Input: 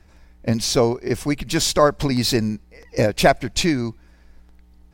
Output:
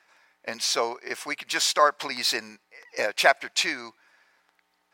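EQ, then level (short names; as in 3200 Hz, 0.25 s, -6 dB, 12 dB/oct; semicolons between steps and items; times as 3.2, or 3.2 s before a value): HPF 1300 Hz 12 dB/oct; high shelf 2100 Hz -11 dB; high shelf 9300 Hz -3.5 dB; +7.5 dB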